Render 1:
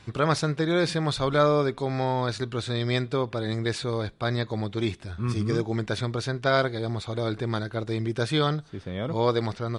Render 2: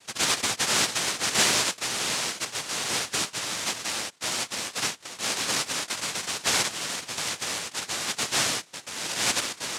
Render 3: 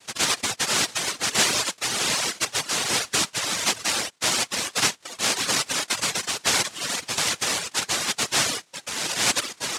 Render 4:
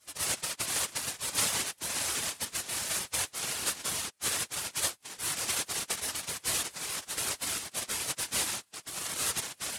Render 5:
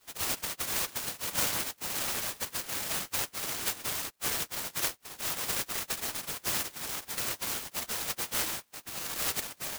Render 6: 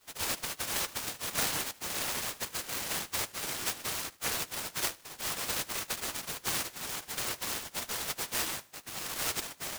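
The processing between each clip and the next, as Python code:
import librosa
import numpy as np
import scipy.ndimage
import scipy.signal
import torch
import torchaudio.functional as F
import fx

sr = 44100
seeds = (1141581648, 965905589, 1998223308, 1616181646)

y1 = fx.noise_vocoder(x, sr, seeds[0], bands=1)
y1 = y1 * 10.0 ** (-2.0 / 20.0)
y2 = fx.dereverb_blind(y1, sr, rt60_s=1.0)
y2 = fx.rider(y2, sr, range_db=3, speed_s=0.5)
y2 = y2 * 10.0 ** (5.0 / 20.0)
y3 = fx.spec_gate(y2, sr, threshold_db=-10, keep='weak')
y4 = fx.peak_eq(y3, sr, hz=11000.0, db=5.5, octaves=0.77)
y4 = fx.noise_mod_delay(y4, sr, seeds[1], noise_hz=4000.0, depth_ms=0.085)
y4 = y4 * 10.0 ** (-2.0 / 20.0)
y5 = fx.echo_feedback(y4, sr, ms=76, feedback_pct=38, wet_db=-21.5)
y5 = fx.doppler_dist(y5, sr, depth_ms=0.97)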